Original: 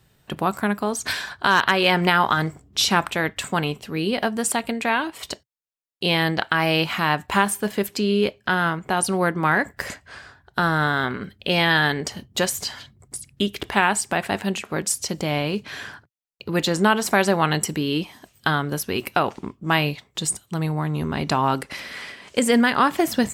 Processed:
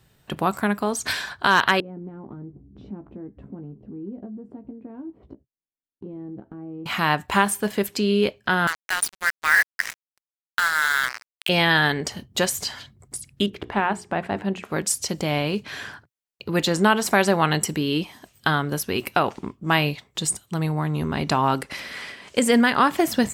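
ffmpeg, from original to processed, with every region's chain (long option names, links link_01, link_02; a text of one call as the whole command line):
ffmpeg -i in.wav -filter_complex "[0:a]asettb=1/sr,asplit=3[link_01][link_02][link_03];[link_01]atrim=end=1.804[link_04];[link_02]atrim=start=1.8:end=6.86,asetpts=PTS-STARTPTS,afade=type=in:duration=0.004:curve=qsin,afade=type=out:start_time=5.056:duration=0.004:curve=qsin,lowpass=frequency=300:width_type=q:width=1.8,acompressor=threshold=-40dB:ratio=2.5:attack=3.2:release=140:knee=1:detection=peak,asplit=2[link_05][link_06];[link_06]adelay=15,volume=-6.5dB[link_07];[link_05][link_07]amix=inputs=2:normalize=0,atrim=end_sample=223146[link_08];[link_03]atrim=start=6.856[link_09];[link_04][link_08]acrossfade=duration=0.004:curve1=hsin:curve2=qsin[link_10];[link_10][link_09]acrossfade=duration=0.004:curve1=qsin:curve2=hsin,asettb=1/sr,asplit=3[link_11][link_12][link_13];[link_11]atrim=end=8.674[link_14];[link_12]atrim=start=8.67:end=11.49,asetpts=PTS-STARTPTS,afade=type=in:duration=0.004:curve=qsin,afade=type=out:start_time=2.816:duration=0.004:curve=qsin,highpass=frequency=1800:width_type=q:width=2.2,acrusher=bits=3:mix=0:aa=0.5,aeval=exprs='sgn(val(0))*max(abs(val(0))-0.00562,0)':channel_layout=same[link_15];[link_13]atrim=start=11.486[link_16];[link_14][link_15]acrossfade=duration=0.004:curve1=hsin:curve2=qsin[link_17];[link_17][link_16]acrossfade=duration=0.004:curve1=qsin:curve2=hsin,asettb=1/sr,asplit=3[link_18][link_19][link_20];[link_18]atrim=end=13.464[link_21];[link_19]atrim=start=13.46:end=14.63,asetpts=PTS-STARTPTS,afade=type=in:duration=0.004:curve=qsin,afade=type=out:start_time=1.166:duration=0.004:curve=qsin,lowpass=frequency=1100:poles=1,deesser=0.75,bandreject=frequency=60:width_type=h:width=6,bandreject=frequency=120:width_type=h:width=6,bandreject=frequency=180:width_type=h:width=6,bandreject=frequency=240:width_type=h:width=6,bandreject=frequency=300:width_type=h:width=6,bandreject=frequency=360:width_type=h:width=6,bandreject=frequency=420:width_type=h:width=6,bandreject=frequency=480:width_type=h:width=6[link_22];[link_20]atrim=start=14.626[link_23];[link_21][link_22]acrossfade=duration=0.004:curve1=hsin:curve2=qsin[link_24];[link_24][link_23]acrossfade=duration=0.004:curve1=qsin:curve2=hsin" out.wav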